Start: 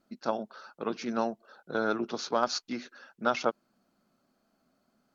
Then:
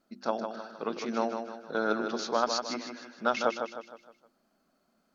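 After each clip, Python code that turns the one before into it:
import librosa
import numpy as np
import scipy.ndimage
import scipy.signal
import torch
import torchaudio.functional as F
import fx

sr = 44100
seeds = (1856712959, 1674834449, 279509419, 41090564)

y = fx.peak_eq(x, sr, hz=110.0, db=-11.0, octaves=0.56)
y = fx.hum_notches(y, sr, base_hz=50, count=7)
y = fx.echo_feedback(y, sr, ms=155, feedback_pct=43, wet_db=-6.5)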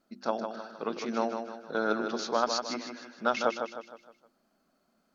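y = x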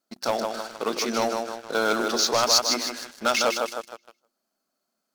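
y = fx.low_shelf(x, sr, hz=200.0, db=-8.0)
y = fx.leveller(y, sr, passes=3)
y = fx.bass_treble(y, sr, bass_db=-3, treble_db=10)
y = y * 10.0 ** (-2.0 / 20.0)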